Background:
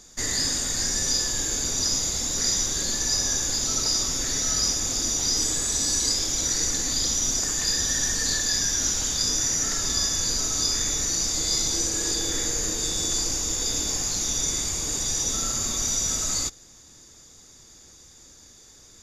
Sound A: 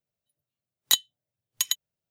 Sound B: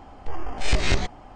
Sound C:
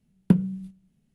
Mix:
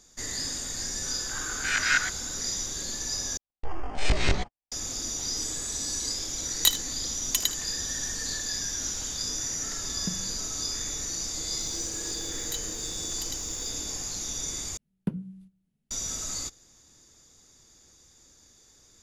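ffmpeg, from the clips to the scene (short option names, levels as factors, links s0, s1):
-filter_complex "[2:a]asplit=2[s0][s1];[1:a]asplit=2[s2][s3];[3:a]asplit=2[s4][s5];[0:a]volume=0.422[s6];[s0]highpass=f=1500:t=q:w=13[s7];[s1]agate=range=0.00126:threshold=0.0141:ratio=16:release=100:detection=peak[s8];[s2]aecho=1:1:57|77:0.126|0.158[s9];[s3]aeval=exprs='val(0)+0.5*0.0168*sgn(val(0))':c=same[s10];[s5]bandreject=f=60:t=h:w=6,bandreject=f=120:t=h:w=6,bandreject=f=180:t=h:w=6,bandreject=f=240:t=h:w=6,bandreject=f=300:t=h:w=6[s11];[s6]asplit=3[s12][s13][s14];[s12]atrim=end=3.374[s15];[s8]atrim=end=1.35,asetpts=PTS-STARTPTS,volume=0.75[s16];[s13]atrim=start=4.716:end=14.774[s17];[s11]atrim=end=1.14,asetpts=PTS-STARTPTS,volume=0.316[s18];[s14]atrim=start=15.906[s19];[s7]atrim=end=1.35,asetpts=PTS-STARTPTS,volume=0.596,afade=t=in:d=0.004:c=hsin,afade=t=out:st=1.346:d=0.004:c=hsin,adelay=1030[s20];[s9]atrim=end=2.1,asetpts=PTS-STARTPTS,volume=0.944,afade=t=in:d=0.004:c=hsin,afade=t=out:st=2.096:d=0.004:c=hsin,adelay=5740[s21];[s4]atrim=end=1.14,asetpts=PTS-STARTPTS,volume=0.15,afade=t=in:d=0.004:c=hsin,afade=t=out:st=1.136:d=0.004:c=hsin,adelay=9770[s22];[s10]atrim=end=2.1,asetpts=PTS-STARTPTS,volume=0.158,afade=t=in:d=0.004:c=hsin,afade=t=out:st=2.096:d=0.004:c=hsin,adelay=11610[s23];[s15][s16]acrossfade=d=0.004:c1=hsin:c2=hsin[s24];[s24][s17]acrossfade=d=0.004:c1=hsin:c2=hsin[s25];[s25][s18]acrossfade=d=0.004:c1=hsin:c2=hsin[s26];[s26][s19]acrossfade=d=0.004:c1=hsin:c2=hsin[s27];[s27][s20][s21][s22][s23]amix=inputs=5:normalize=0"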